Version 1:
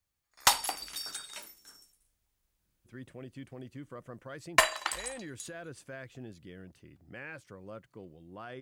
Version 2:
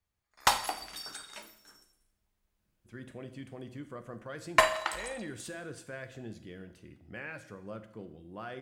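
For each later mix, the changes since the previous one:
background: add high shelf 3400 Hz -9.5 dB; reverb: on, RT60 0.75 s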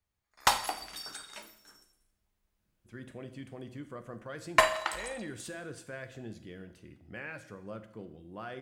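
none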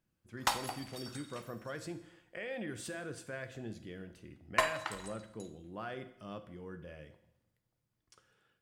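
speech: entry -2.60 s; background -6.5 dB

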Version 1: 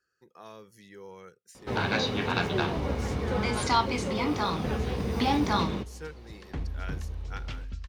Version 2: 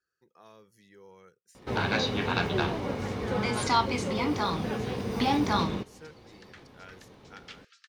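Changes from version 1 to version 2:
speech -7.0 dB; second sound: add rippled Chebyshev high-pass 1200 Hz, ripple 3 dB

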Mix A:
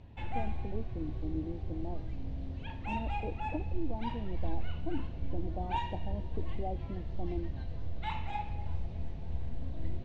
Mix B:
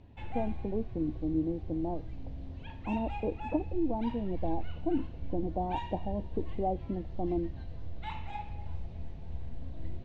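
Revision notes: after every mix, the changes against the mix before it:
speech +7.5 dB; background -3.0 dB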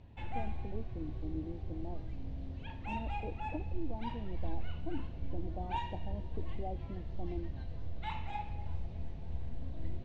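speech -11.0 dB

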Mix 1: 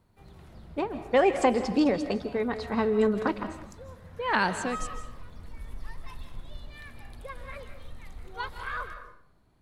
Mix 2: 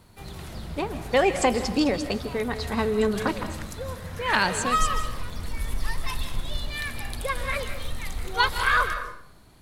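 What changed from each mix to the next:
background +11.0 dB; master: add high shelf 2600 Hz +11 dB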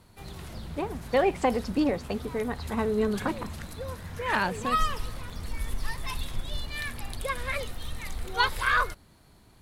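speech: add LPF 1600 Hz 6 dB/oct; reverb: off

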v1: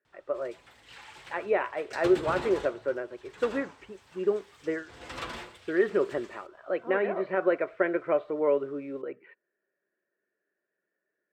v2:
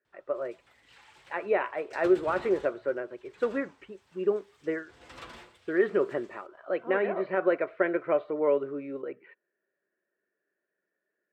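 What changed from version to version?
background -8.0 dB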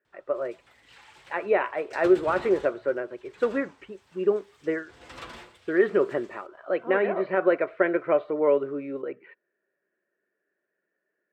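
speech +3.5 dB; background +4.0 dB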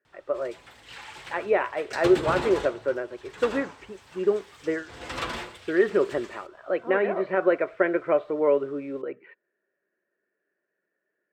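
background +10.0 dB

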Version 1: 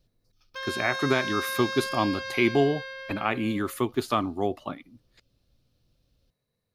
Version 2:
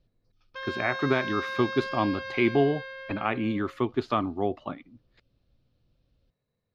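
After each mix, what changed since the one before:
master: add air absorption 200 m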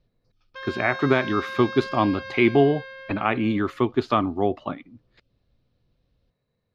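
speech +5.0 dB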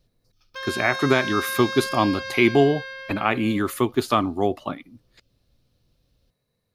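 background: send +10.5 dB; master: remove air absorption 200 m

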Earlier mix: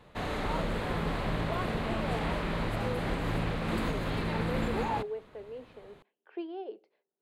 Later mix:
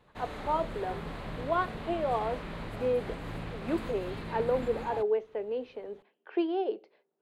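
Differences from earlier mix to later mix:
speech +9.5 dB; background -7.5 dB

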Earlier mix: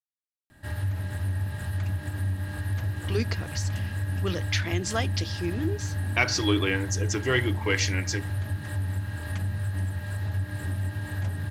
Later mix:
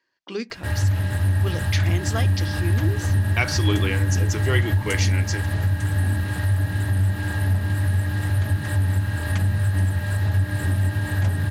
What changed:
speech: entry -2.80 s; background +8.5 dB

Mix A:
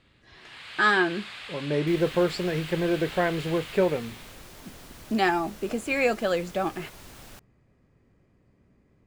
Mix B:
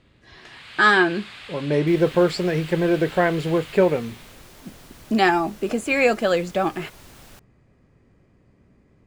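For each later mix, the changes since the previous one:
speech +5.5 dB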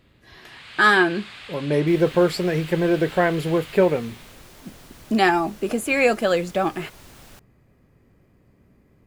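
speech: remove LPF 8600 Hz 24 dB/oct

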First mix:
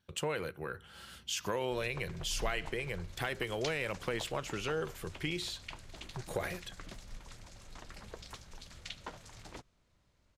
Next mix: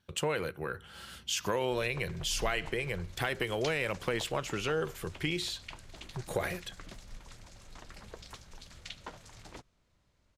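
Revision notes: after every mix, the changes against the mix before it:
speech +3.5 dB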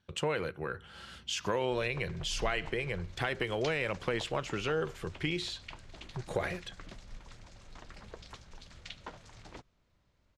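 master: add air absorption 65 m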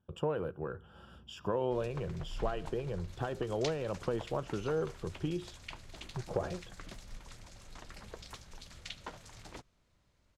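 speech: add running mean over 21 samples; master: remove air absorption 65 m

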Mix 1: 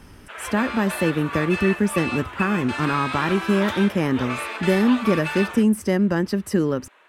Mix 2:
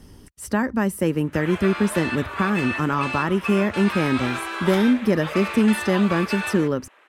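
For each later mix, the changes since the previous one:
background: entry +1.05 s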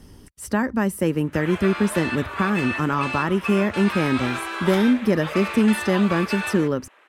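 none

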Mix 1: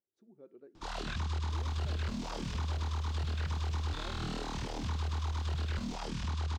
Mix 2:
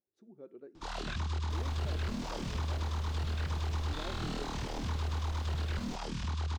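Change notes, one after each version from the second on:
speech +4.5 dB; second sound +8.0 dB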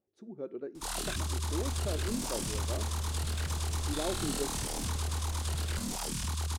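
speech +10.5 dB; first sound: remove air absorption 160 m; master: add bell 9100 Hz +5 dB 0.44 oct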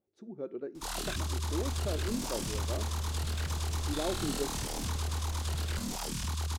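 speech: send on; master: add bell 9100 Hz -5 dB 0.44 oct

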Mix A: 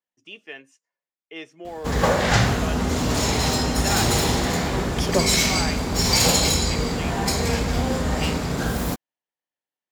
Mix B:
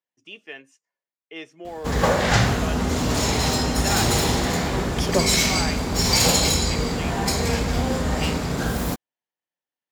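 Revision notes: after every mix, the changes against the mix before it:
none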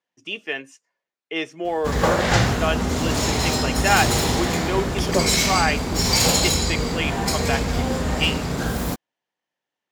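speech +10.5 dB

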